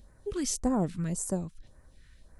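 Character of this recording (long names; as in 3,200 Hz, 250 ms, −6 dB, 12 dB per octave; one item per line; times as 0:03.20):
phaser sweep stages 2, 1.8 Hz, lowest notch 610–3,100 Hz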